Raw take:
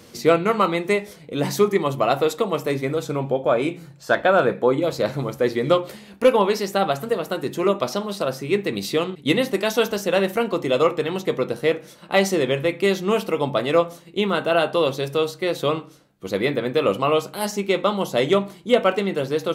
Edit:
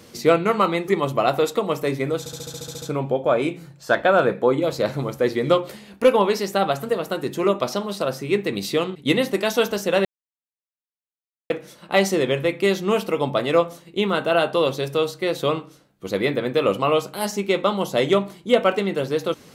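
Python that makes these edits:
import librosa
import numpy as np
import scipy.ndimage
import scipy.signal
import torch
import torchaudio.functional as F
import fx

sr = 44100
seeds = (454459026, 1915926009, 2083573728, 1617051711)

y = fx.edit(x, sr, fx.cut(start_s=0.88, length_s=0.83),
    fx.stutter(start_s=3.02, slice_s=0.07, count=10),
    fx.silence(start_s=10.25, length_s=1.45), tone=tone)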